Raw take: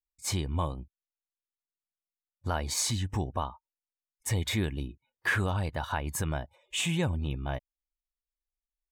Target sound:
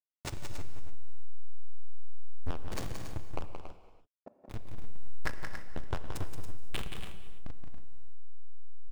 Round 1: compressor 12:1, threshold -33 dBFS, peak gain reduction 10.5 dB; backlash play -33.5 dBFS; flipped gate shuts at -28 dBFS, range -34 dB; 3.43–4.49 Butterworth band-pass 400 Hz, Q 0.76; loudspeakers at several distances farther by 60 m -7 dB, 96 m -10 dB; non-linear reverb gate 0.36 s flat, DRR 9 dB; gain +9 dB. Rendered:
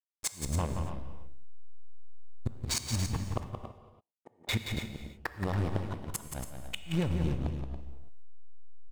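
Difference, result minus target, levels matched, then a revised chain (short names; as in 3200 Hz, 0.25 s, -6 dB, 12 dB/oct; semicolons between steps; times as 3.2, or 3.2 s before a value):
backlash: distortion -35 dB
compressor 12:1, threshold -33 dBFS, peak gain reduction 10.5 dB; backlash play -23 dBFS; flipped gate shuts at -28 dBFS, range -34 dB; 3.43–4.49 Butterworth band-pass 400 Hz, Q 0.76; loudspeakers at several distances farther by 60 m -7 dB, 96 m -10 dB; non-linear reverb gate 0.36 s flat, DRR 9 dB; gain +9 dB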